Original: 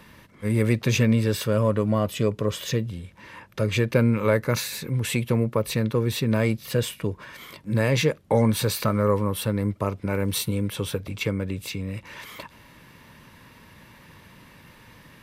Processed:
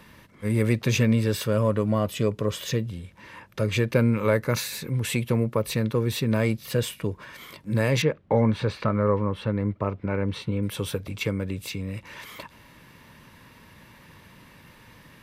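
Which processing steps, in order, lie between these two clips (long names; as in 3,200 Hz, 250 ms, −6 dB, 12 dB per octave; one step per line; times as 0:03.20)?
0:08.02–0:10.63: low-pass filter 2,600 Hz 12 dB per octave
level −1 dB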